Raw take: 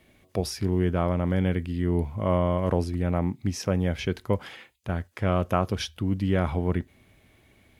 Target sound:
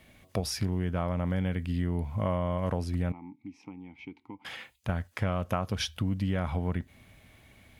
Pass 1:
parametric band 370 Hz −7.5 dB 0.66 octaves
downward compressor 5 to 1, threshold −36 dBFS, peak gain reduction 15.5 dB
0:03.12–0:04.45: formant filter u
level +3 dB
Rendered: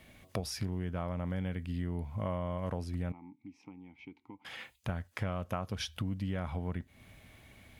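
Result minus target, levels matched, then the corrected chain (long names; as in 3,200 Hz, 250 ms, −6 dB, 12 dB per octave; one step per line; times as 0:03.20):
downward compressor: peak gain reduction +6 dB
parametric band 370 Hz −7.5 dB 0.66 octaves
downward compressor 5 to 1, threshold −28.5 dBFS, peak gain reduction 9.5 dB
0:03.12–0:04.45: formant filter u
level +3 dB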